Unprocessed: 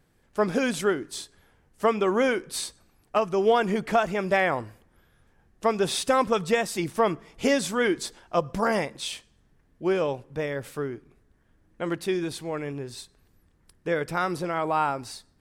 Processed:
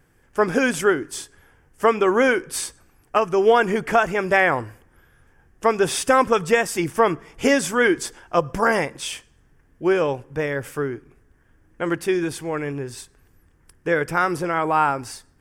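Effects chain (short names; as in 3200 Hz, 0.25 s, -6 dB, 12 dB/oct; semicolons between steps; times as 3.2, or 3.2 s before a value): thirty-one-band EQ 200 Hz -7 dB, 630 Hz -4 dB, 1600 Hz +4 dB, 4000 Hz -12 dB; gain +6 dB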